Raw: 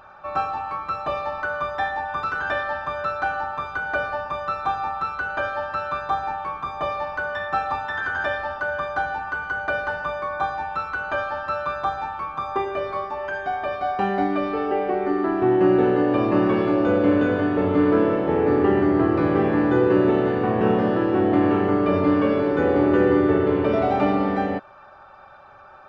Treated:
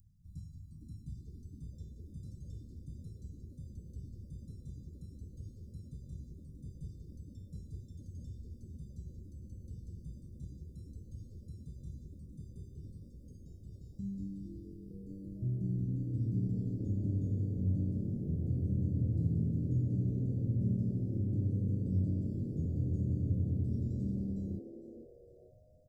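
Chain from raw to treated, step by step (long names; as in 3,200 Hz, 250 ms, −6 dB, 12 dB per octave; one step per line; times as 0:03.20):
inverse Chebyshev band-stop filter 550–2,500 Hz, stop band 70 dB
echo with shifted repeats 455 ms, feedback 36%, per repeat +140 Hz, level −13.5 dB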